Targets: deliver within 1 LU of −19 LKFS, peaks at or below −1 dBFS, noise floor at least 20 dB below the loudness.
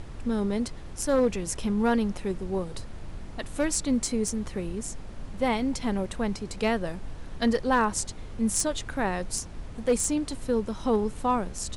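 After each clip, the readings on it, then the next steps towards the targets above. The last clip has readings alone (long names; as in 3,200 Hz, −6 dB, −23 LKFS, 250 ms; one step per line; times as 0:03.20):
share of clipped samples 0.2%; peaks flattened at −16.0 dBFS; background noise floor −40 dBFS; target noise floor −49 dBFS; integrated loudness −28.5 LKFS; sample peak −16.0 dBFS; target loudness −19.0 LKFS
→ clipped peaks rebuilt −16 dBFS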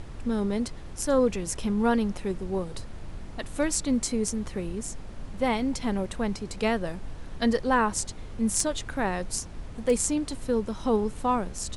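share of clipped samples 0.0%; background noise floor −40 dBFS; target noise floor −48 dBFS
→ noise reduction from a noise print 8 dB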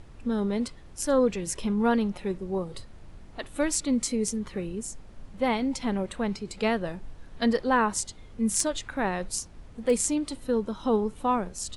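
background noise floor −48 dBFS; integrated loudness −28.0 LKFS; sample peak −7.0 dBFS; target loudness −19.0 LKFS
→ level +9 dB
brickwall limiter −1 dBFS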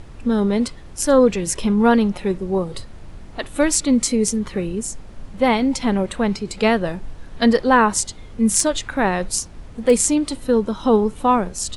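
integrated loudness −19.0 LKFS; sample peak −1.0 dBFS; background noise floor −39 dBFS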